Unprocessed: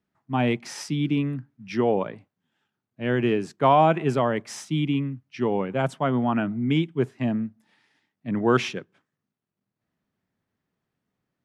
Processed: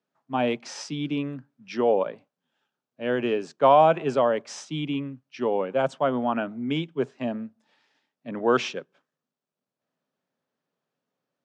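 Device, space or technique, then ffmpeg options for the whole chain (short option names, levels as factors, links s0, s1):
television speaker: -af "highpass=f=170:w=0.5412,highpass=f=170:w=1.3066,equalizer=f=200:t=q:w=4:g=-9,equalizer=f=330:t=q:w=4:g=-6,equalizer=f=550:t=q:w=4:g=6,equalizer=f=2000:t=q:w=4:g=-6,lowpass=f=7400:w=0.5412,lowpass=f=7400:w=1.3066"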